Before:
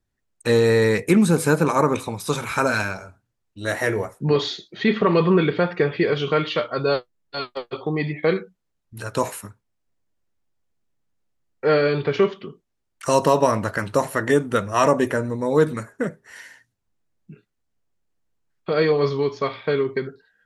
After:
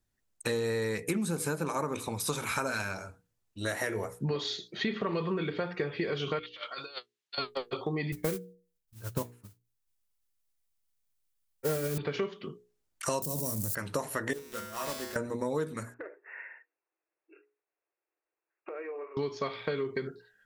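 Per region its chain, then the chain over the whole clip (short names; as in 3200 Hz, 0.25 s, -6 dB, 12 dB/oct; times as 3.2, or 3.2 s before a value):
6.39–7.38 band-pass 3300 Hz, Q 1.1 + negative-ratio compressor -38 dBFS, ratio -0.5
8.12–11.98 RIAA curve playback + modulation noise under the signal 15 dB + upward expander 2.5:1, over -27 dBFS
13.22–13.75 switching spikes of -20 dBFS + EQ curve 150 Hz 0 dB, 1300 Hz -23 dB, 2800 Hz -21 dB, 4400 Hz -10 dB, 8400 Hz -1 dB + fast leveller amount 70%
14.33–15.16 block floating point 3-bit + resonator 73 Hz, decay 1.3 s, harmonics odd, mix 90%
15.94–19.17 brick-wall FIR band-pass 300–2800 Hz + compressor, threshold -35 dBFS
whole clip: high shelf 5200 Hz +7 dB; notches 60/120/180/240/300/360/420/480 Hz; compressor 6:1, threshold -26 dBFS; gain -3 dB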